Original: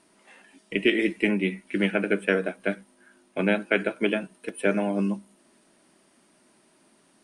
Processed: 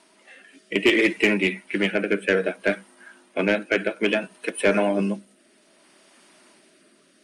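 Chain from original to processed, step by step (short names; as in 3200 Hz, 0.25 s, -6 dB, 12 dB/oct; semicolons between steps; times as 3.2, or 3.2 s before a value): bin magnitudes rounded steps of 15 dB; rotary speaker horn 0.6 Hz; overdrive pedal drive 15 dB, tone 6300 Hz, clips at -9 dBFS; gain +2 dB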